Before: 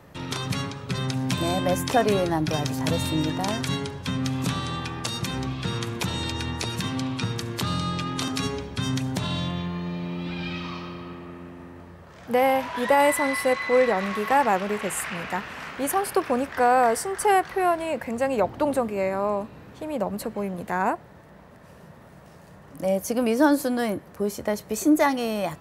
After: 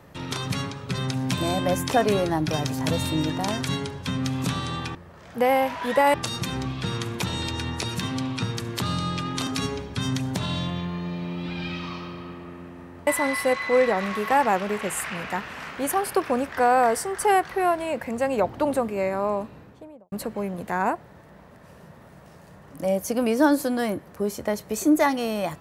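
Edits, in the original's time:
11.88–13.07 move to 4.95
19.43–20.12 studio fade out

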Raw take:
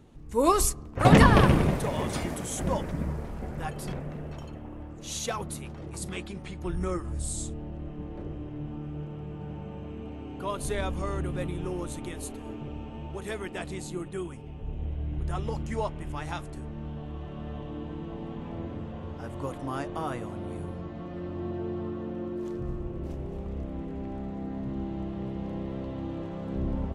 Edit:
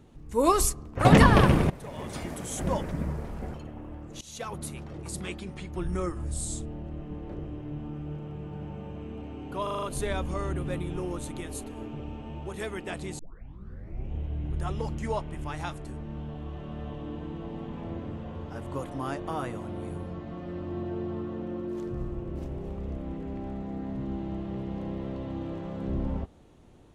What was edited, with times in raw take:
1.7–2.68 fade in, from -17 dB
3.54–4.42 cut
5.09–5.52 fade in, from -20.5 dB
10.51 stutter 0.04 s, 6 plays
13.87 tape start 0.95 s

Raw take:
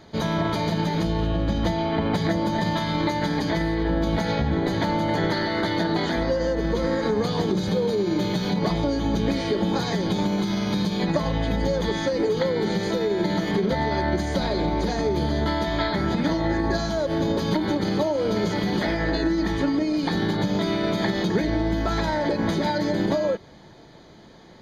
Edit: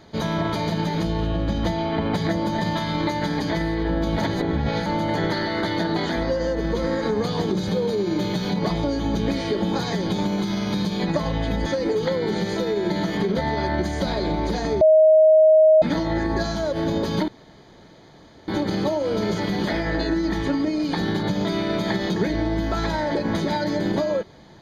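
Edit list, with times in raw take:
4.22–4.86 reverse
11.66–12 cut
15.15–16.16 bleep 628 Hz -10 dBFS
17.62 insert room tone 1.20 s

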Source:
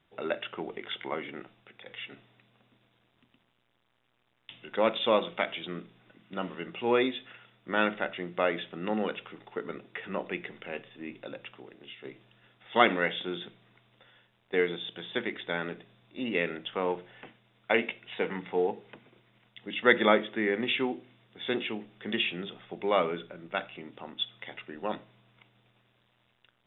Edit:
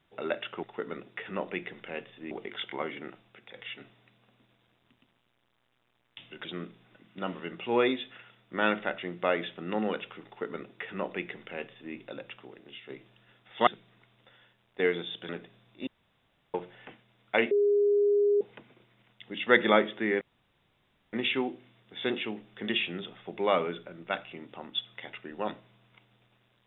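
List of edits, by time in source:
4.77–5.6 cut
9.41–11.09 copy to 0.63
12.82–13.41 cut
15.03–15.65 cut
16.23–16.9 room tone
17.87–18.77 bleep 409 Hz -20.5 dBFS
20.57 insert room tone 0.92 s

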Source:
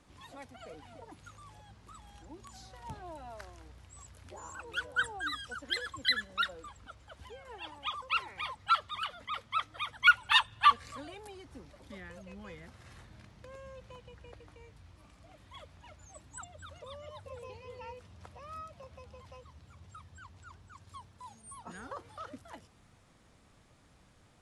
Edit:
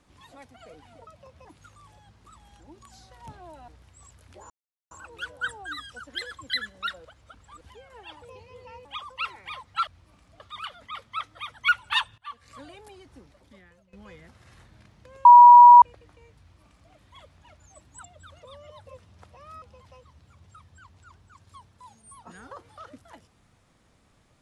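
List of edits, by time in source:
3.3–3.64 cut
4.46 insert silence 0.41 s
6.6–7.16 reverse
10.57–10.99 fade in quadratic, from -23 dB
11.5–12.32 fade out, to -19 dB
13.64–14.21 bleep 966 Hz -6 dBFS
14.78–15.31 copy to 8.79
17.36–17.99 move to 7.77
18.64–19.02 move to 1.07

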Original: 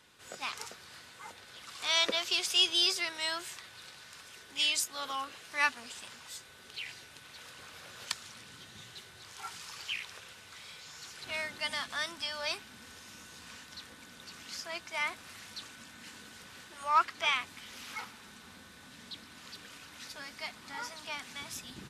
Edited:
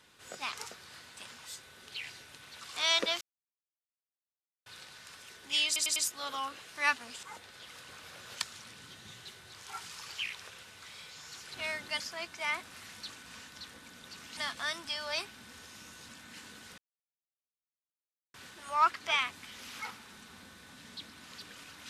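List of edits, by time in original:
1.17–1.66 swap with 5.99–7.42
2.27–3.72 mute
4.72 stutter 0.10 s, 4 plays
11.7–13.42 swap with 14.53–15.79
16.48 insert silence 1.56 s

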